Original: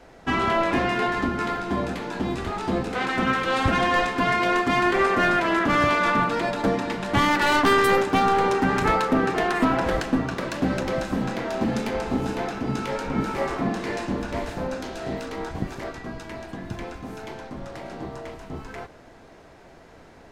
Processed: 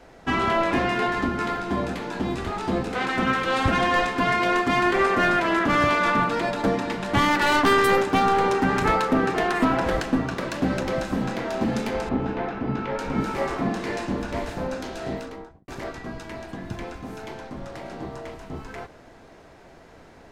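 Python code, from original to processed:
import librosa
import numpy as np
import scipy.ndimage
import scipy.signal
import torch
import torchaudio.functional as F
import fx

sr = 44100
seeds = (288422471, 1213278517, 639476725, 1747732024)

y = fx.lowpass(x, sr, hz=2500.0, slope=12, at=(12.09, 12.99))
y = fx.studio_fade_out(y, sr, start_s=15.07, length_s=0.61)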